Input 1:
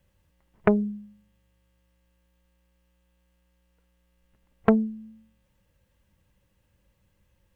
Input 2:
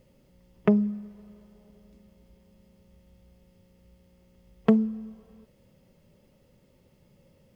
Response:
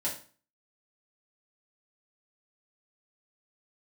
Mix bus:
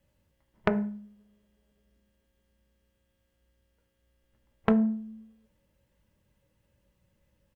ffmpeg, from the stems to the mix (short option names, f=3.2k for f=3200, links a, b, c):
-filter_complex "[0:a]volume=-4.5dB,asplit=2[a][b];[b]volume=-4.5dB[c];[1:a]adelay=17,volume=-13.5dB[d];[2:a]atrim=start_sample=2205[e];[c][e]afir=irnorm=-1:irlink=0[f];[a][d][f]amix=inputs=3:normalize=0,aeval=exprs='0.668*(cos(1*acos(clip(val(0)/0.668,-1,1)))-cos(1*PI/2))+0.075*(cos(3*acos(clip(val(0)/0.668,-1,1)))-cos(3*PI/2))':c=same,acompressor=threshold=-19dB:ratio=6"